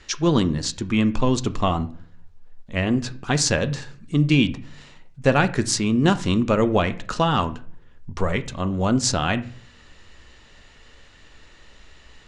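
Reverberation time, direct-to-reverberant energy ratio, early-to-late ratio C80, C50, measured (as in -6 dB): 0.50 s, 11.0 dB, 21.0 dB, 17.0 dB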